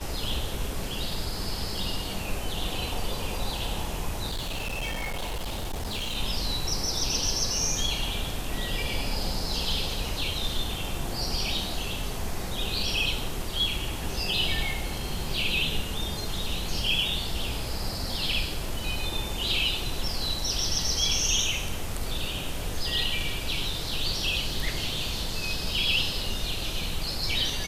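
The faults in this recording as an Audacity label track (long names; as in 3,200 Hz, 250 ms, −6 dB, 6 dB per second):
4.300000	6.160000	clipping −28 dBFS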